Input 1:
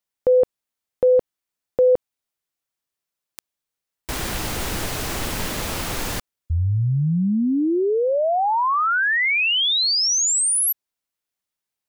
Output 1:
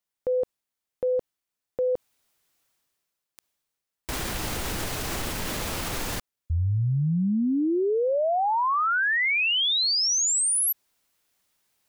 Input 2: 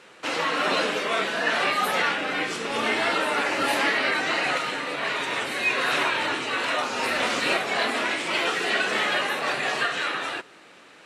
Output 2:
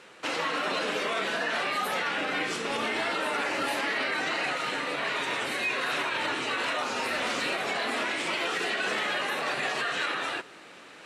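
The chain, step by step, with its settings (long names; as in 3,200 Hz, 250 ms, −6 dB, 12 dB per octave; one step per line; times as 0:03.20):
reversed playback
upward compression 1.5 to 1, threshold −37 dBFS
reversed playback
brickwall limiter −19 dBFS
level −1.5 dB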